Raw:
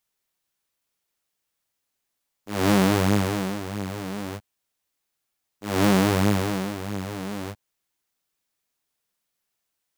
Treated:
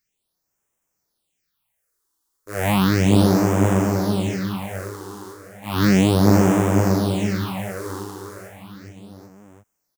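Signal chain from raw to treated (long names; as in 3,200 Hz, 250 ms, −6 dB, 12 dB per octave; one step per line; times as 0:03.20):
bouncing-ball delay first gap 510 ms, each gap 0.9×, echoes 5
all-pass phaser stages 6, 0.34 Hz, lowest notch 160–4,200 Hz
level +4.5 dB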